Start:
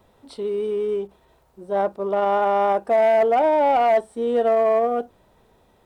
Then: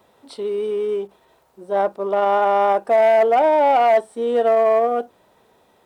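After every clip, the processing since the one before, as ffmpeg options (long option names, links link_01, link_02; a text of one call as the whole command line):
ffmpeg -i in.wav -af "highpass=frequency=320:poles=1,volume=3.5dB" out.wav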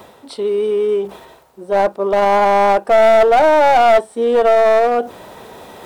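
ffmpeg -i in.wav -af "areverse,acompressor=mode=upward:threshold=-29dB:ratio=2.5,areverse,aeval=exprs='clip(val(0),-1,0.15)':channel_layout=same,volume=6dB" out.wav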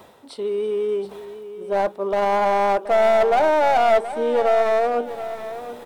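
ffmpeg -i in.wav -af "aecho=1:1:726|1452|2178:0.237|0.0806|0.0274,volume=-6.5dB" out.wav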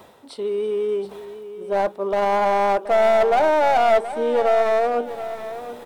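ffmpeg -i in.wav -af anull out.wav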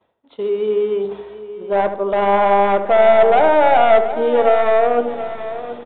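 ffmpeg -i in.wav -filter_complex "[0:a]agate=range=-33dB:threshold=-34dB:ratio=3:detection=peak,aresample=8000,aresample=44100,asplit=2[link_01][link_02];[link_02]adelay=75,lowpass=frequency=1300:poles=1,volume=-7.5dB,asplit=2[link_03][link_04];[link_04]adelay=75,lowpass=frequency=1300:poles=1,volume=0.54,asplit=2[link_05][link_06];[link_06]adelay=75,lowpass=frequency=1300:poles=1,volume=0.54,asplit=2[link_07][link_08];[link_08]adelay=75,lowpass=frequency=1300:poles=1,volume=0.54,asplit=2[link_09][link_10];[link_10]adelay=75,lowpass=frequency=1300:poles=1,volume=0.54,asplit=2[link_11][link_12];[link_12]adelay=75,lowpass=frequency=1300:poles=1,volume=0.54,asplit=2[link_13][link_14];[link_14]adelay=75,lowpass=frequency=1300:poles=1,volume=0.54[link_15];[link_01][link_03][link_05][link_07][link_09][link_11][link_13][link_15]amix=inputs=8:normalize=0,volume=4dB" out.wav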